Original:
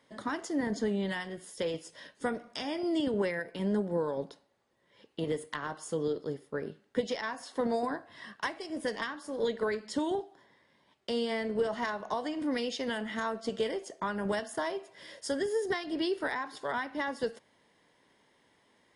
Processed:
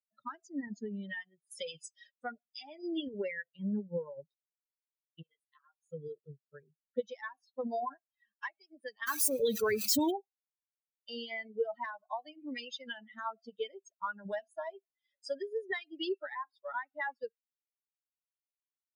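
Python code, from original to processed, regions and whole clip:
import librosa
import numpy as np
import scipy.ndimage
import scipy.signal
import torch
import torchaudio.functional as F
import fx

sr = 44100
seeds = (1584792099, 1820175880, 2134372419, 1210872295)

y = fx.chain(x, sr, fx.peak_eq(hz=7100.0, db=11.0, octaves=1.7),
    fx.band_squash(depth_pct=70), at=(1.51, 2.12))
y = fx.chain(y, sr, fx.highpass(hz=910.0, slope=6),
    fx.detune_double(cents=33), at=(5.22, 5.9))
y = fx.chain(y, sr, fx.crossing_spikes(level_db=-28.5),
    fx.peak_eq(hz=110.0, db=10.5, octaves=1.8),
    fx.env_flatten(amount_pct=70), at=(9.07, 10.11))
y = fx.bin_expand(y, sr, power=3.0)
y = scipy.signal.sosfilt(scipy.signal.butter(2, 93.0, 'highpass', fs=sr, output='sos'), y)
y = fx.low_shelf(y, sr, hz=470.0, db=-4.5)
y = y * librosa.db_to_amplitude(4.0)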